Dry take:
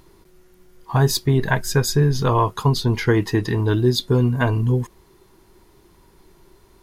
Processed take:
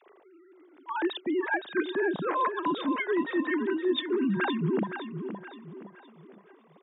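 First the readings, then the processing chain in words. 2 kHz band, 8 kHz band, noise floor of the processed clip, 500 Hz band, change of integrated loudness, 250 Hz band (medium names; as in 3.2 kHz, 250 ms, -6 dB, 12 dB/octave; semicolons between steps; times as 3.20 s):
-4.0 dB, under -40 dB, -59 dBFS, -7.0 dB, -9.5 dB, -6.0 dB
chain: formants replaced by sine waves; high-pass 200 Hz 12 dB/octave; reverse; compression, threshold -24 dBFS, peak gain reduction 16 dB; reverse; feedback delay 517 ms, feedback 39%, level -9 dB; trim -1.5 dB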